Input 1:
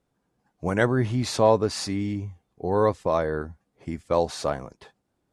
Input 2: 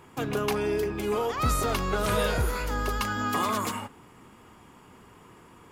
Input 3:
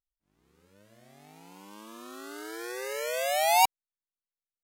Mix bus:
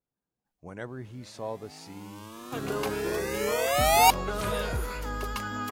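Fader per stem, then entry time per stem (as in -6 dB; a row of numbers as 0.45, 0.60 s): -17.0, -4.5, +2.5 dB; 0.00, 2.35, 0.45 s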